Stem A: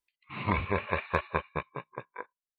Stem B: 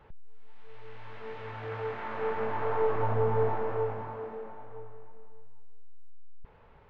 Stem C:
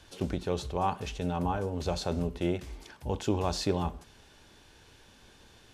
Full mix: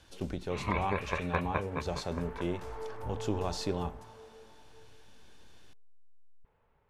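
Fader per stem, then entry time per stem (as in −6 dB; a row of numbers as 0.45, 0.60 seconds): −3.5, −14.0, −4.5 decibels; 0.20, 0.00, 0.00 seconds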